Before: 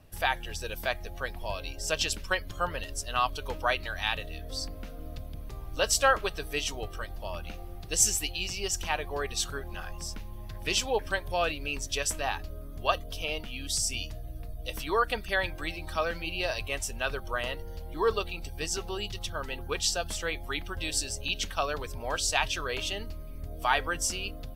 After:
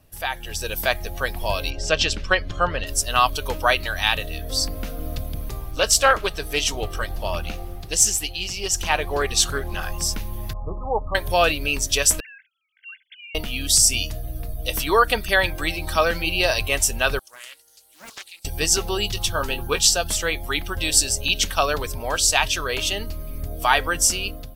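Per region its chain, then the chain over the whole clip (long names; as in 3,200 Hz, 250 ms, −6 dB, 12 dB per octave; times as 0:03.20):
0:01.70–0:02.87: high-frequency loss of the air 140 metres + notch filter 950 Hz, Q 11
0:05.71–0:09.83: high-shelf EQ 11,000 Hz −5 dB + highs frequency-modulated by the lows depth 0.16 ms
0:10.53–0:11.15: linear-phase brick-wall low-pass 1,300 Hz + parametric band 340 Hz −11 dB 1.3 octaves + mains-hum notches 50/100/150/200/250/300/350 Hz
0:12.20–0:13.35: three sine waves on the formant tracks + Chebyshev high-pass with heavy ripple 1,500 Hz, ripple 9 dB + downward compressor 3 to 1, threshold −51 dBFS
0:17.19–0:18.45: resonant band-pass 7,900 Hz, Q 2.4 + comb filter 3.6 ms, depth 36% + highs frequency-modulated by the lows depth 0.6 ms
0:19.15–0:19.87: notch filter 2,000 Hz, Q 8.9 + double-tracking delay 18 ms −8 dB
whole clip: high-shelf EQ 6,600 Hz +9 dB; automatic gain control gain up to 12 dB; level −1 dB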